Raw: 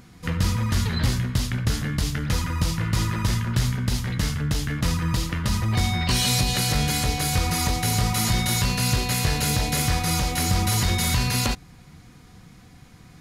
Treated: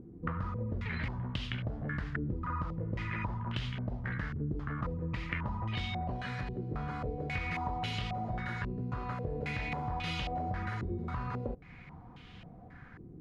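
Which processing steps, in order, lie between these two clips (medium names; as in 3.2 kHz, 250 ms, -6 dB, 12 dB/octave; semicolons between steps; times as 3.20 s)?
compression, threshold -30 dBFS, peak gain reduction 12.5 dB; step-sequenced low-pass 3.7 Hz 370–3000 Hz; trim -4 dB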